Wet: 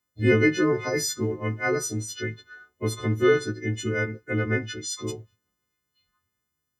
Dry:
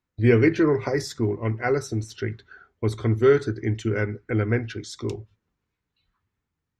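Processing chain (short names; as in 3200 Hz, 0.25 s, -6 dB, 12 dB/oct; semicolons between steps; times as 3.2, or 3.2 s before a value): frequency quantiser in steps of 3 st; notch comb 820 Hz; gain -1.5 dB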